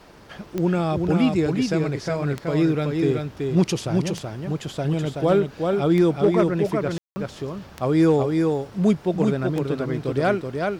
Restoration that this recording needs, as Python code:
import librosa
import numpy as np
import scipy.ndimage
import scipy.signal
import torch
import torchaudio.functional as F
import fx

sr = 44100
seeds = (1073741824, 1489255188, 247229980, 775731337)

y = fx.fix_declip(x, sr, threshold_db=-10.5)
y = fx.fix_declick_ar(y, sr, threshold=10.0)
y = fx.fix_ambience(y, sr, seeds[0], print_start_s=0.0, print_end_s=0.5, start_s=6.98, end_s=7.16)
y = fx.fix_echo_inverse(y, sr, delay_ms=377, level_db=-4.0)